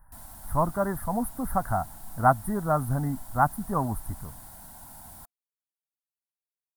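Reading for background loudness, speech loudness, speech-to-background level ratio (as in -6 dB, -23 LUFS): -45.0 LUFS, -28.0 LUFS, 17.0 dB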